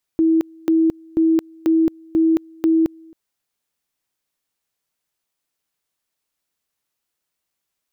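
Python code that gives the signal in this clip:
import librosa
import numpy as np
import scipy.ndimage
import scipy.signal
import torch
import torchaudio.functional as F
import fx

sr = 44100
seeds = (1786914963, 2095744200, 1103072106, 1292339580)

y = fx.two_level_tone(sr, hz=324.0, level_db=-12.0, drop_db=28.5, high_s=0.22, low_s=0.27, rounds=6)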